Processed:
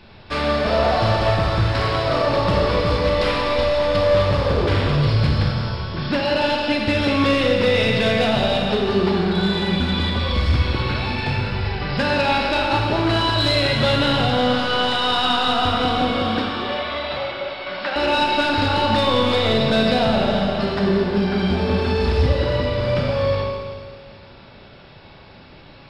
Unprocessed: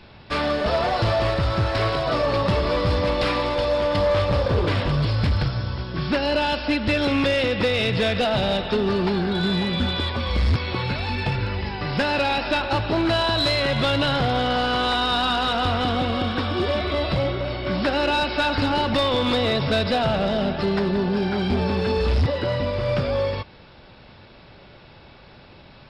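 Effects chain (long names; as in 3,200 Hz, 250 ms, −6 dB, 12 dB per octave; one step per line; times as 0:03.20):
0:16.42–0:17.96: three-way crossover with the lows and the highs turned down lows −18 dB, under 540 Hz, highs −15 dB, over 4,700 Hz
four-comb reverb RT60 1.9 s, combs from 28 ms, DRR 0 dB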